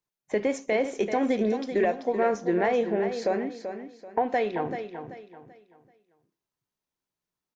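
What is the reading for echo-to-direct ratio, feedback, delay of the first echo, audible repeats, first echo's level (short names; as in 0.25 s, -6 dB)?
-8.5 dB, 32%, 0.385 s, 3, -9.0 dB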